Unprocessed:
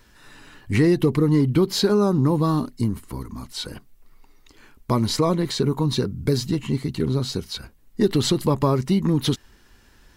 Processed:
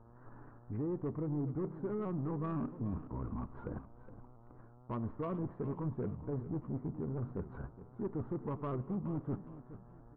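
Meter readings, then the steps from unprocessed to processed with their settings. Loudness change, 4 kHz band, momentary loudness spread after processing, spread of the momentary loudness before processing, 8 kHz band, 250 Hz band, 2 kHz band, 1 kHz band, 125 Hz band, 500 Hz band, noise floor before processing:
-18.0 dB, under -40 dB, 19 LU, 14 LU, under -40 dB, -17.0 dB, -23.5 dB, -17.0 dB, -16.0 dB, -18.0 dB, -55 dBFS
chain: companding laws mixed up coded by A; steep low-pass 1.3 kHz 36 dB/octave; reverse; compression 8:1, threshold -32 dBFS, peak gain reduction 18 dB; reverse; mains buzz 120 Hz, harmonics 11, -61 dBFS -5 dB/octave; saturation -30.5 dBFS, distortion -14 dB; on a send: feedback delay 418 ms, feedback 33%, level -14 dB; on the sum: spring tank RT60 1.3 s, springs 33 ms, chirp 60 ms, DRR 18 dB; vibrato with a chosen wave saw up 3.9 Hz, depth 100 cents

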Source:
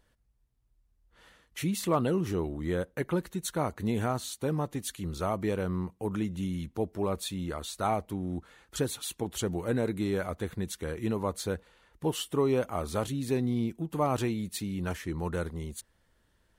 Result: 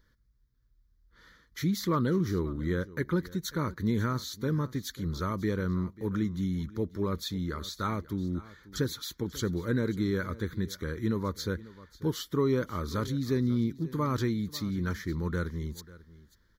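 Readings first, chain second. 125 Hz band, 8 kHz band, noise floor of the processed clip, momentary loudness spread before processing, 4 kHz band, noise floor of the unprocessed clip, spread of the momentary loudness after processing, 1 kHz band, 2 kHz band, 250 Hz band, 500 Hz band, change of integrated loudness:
+2.5 dB, -4.5 dB, -67 dBFS, 7 LU, +0.5 dB, -70 dBFS, 7 LU, -3.0 dB, +2.0 dB, +1.5 dB, -2.5 dB, +0.5 dB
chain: static phaser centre 2.7 kHz, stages 6; delay 541 ms -19 dB; trim +3 dB

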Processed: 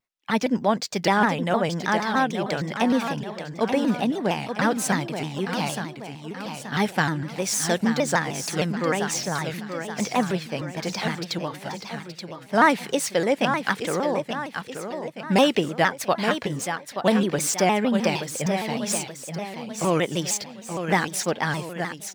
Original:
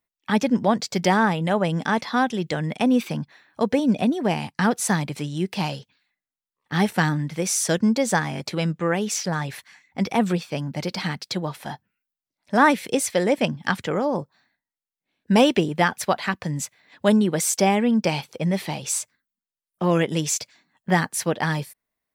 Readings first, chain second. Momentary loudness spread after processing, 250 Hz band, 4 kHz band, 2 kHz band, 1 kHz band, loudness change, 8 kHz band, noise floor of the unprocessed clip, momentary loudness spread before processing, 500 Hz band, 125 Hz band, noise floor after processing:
12 LU, -2.5 dB, +0.5 dB, +0.5 dB, 0.0 dB, -1.5 dB, -1.5 dB, under -85 dBFS, 10 LU, -0.5 dB, -3.5 dB, -43 dBFS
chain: median filter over 3 samples; bass shelf 240 Hz -6.5 dB; on a send: feedback delay 877 ms, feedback 48%, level -8 dB; on the sum: vibrato with a chosen wave saw down 6.5 Hz, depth 160 cents

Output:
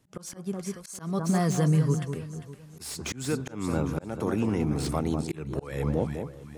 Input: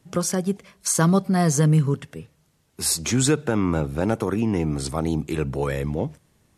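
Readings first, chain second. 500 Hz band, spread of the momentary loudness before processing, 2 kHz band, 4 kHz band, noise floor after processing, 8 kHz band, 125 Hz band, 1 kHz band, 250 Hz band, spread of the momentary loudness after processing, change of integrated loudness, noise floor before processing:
-6.0 dB, 10 LU, -8.0 dB, -9.5 dB, -50 dBFS, -12.5 dB, -5.0 dB, -6.5 dB, -5.5 dB, 14 LU, -6.5 dB, -64 dBFS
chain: recorder AGC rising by 13 dB/s; echo whose repeats swap between lows and highs 200 ms, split 1.3 kHz, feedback 57%, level -7 dB; slow attack 279 ms; slew-rate limiter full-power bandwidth 260 Hz; trim -6 dB

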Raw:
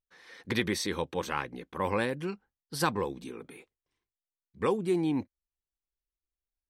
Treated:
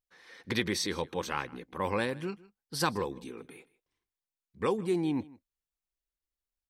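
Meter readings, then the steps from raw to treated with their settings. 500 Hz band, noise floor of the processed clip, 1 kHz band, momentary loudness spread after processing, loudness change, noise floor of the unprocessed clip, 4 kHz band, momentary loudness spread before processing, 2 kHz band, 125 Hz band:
-1.5 dB, under -85 dBFS, -1.5 dB, 17 LU, -1.0 dB, under -85 dBFS, +1.5 dB, 17 LU, -1.0 dB, -1.5 dB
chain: on a send: delay 157 ms -21.5 dB; on the sum: dynamic bell 5 kHz, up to +4 dB, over -48 dBFS, Q 1.2; trim -1.5 dB

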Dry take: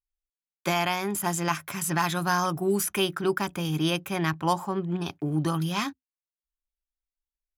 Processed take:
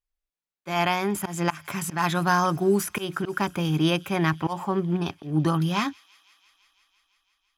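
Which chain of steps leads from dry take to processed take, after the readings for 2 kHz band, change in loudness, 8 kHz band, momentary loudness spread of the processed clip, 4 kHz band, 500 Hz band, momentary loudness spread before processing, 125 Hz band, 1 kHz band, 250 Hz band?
+1.5 dB, +2.0 dB, -3.0 dB, 7 LU, -0.5 dB, +2.0 dB, 4 LU, +3.0 dB, +2.0 dB, +3.0 dB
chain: treble shelf 4.7 kHz -8.5 dB; slow attack 153 ms; feedback echo behind a high-pass 168 ms, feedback 79%, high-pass 2.5 kHz, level -22 dB; trim +4 dB

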